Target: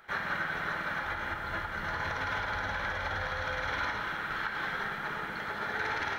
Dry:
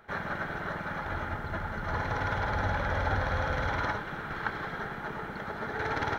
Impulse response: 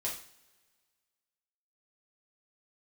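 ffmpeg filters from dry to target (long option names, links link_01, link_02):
-filter_complex "[0:a]asplit=2[link_01][link_02];[1:a]atrim=start_sample=2205,asetrate=22491,aresample=44100,lowpass=3900[link_03];[link_02][link_03]afir=irnorm=-1:irlink=0,volume=-7dB[link_04];[link_01][link_04]amix=inputs=2:normalize=0,alimiter=limit=-20dB:level=0:latency=1:release=138,tiltshelf=frequency=1200:gain=-8,volume=-2.5dB"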